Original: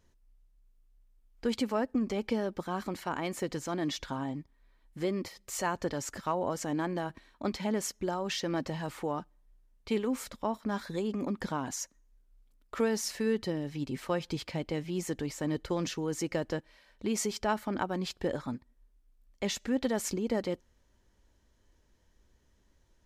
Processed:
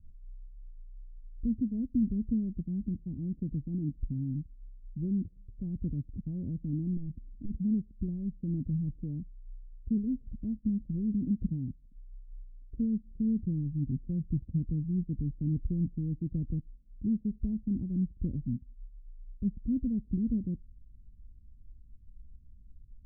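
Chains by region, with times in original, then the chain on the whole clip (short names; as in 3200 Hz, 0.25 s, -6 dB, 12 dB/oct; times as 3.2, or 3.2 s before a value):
6.95–7.57 upward compressor, threshold -51 dBFS + hard clip -30 dBFS + core saturation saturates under 110 Hz
whole clip: inverse Chebyshev low-pass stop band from 1400 Hz, stop band 80 dB; tilt -4 dB/oct; gain -2.5 dB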